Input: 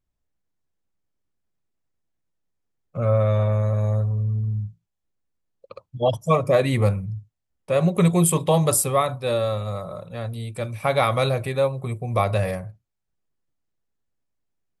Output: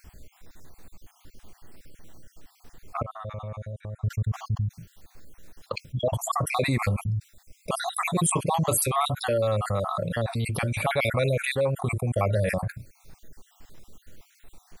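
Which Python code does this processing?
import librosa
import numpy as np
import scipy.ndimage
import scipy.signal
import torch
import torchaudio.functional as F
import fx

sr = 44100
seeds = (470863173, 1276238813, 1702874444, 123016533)

y = fx.spec_dropout(x, sr, seeds[0], share_pct=50)
y = fx.gate_flip(y, sr, shuts_db=-28.0, range_db=-38, at=(3.01, 4.02), fade=0.02)
y = fx.env_flatten(y, sr, amount_pct=70)
y = y * librosa.db_to_amplitude(-5.5)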